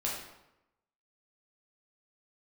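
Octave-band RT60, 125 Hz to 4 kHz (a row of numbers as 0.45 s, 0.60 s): 0.90 s, 0.95 s, 0.90 s, 0.90 s, 0.75 s, 0.65 s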